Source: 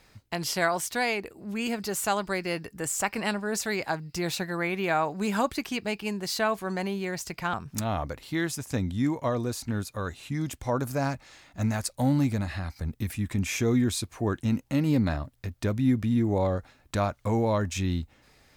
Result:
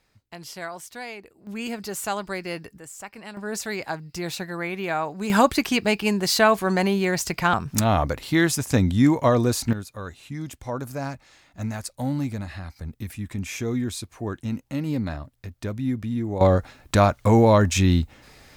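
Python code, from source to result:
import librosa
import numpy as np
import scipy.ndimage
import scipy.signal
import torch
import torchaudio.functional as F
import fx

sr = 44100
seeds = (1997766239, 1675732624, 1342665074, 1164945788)

y = fx.gain(x, sr, db=fx.steps((0.0, -9.0), (1.47, -1.0), (2.78, -11.0), (3.37, -0.5), (5.3, 9.0), (9.73, -2.5), (16.41, 9.5)))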